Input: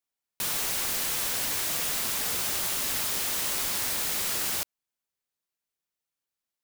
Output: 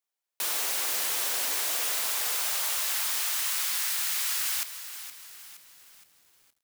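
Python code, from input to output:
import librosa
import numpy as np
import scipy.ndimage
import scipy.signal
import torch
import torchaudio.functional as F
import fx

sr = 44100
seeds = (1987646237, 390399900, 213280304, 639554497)

y = fx.filter_sweep_highpass(x, sr, from_hz=440.0, to_hz=1300.0, start_s=1.55, end_s=3.72, q=0.83)
y = fx.echo_crushed(y, sr, ms=468, feedback_pct=55, bits=8, wet_db=-11.5)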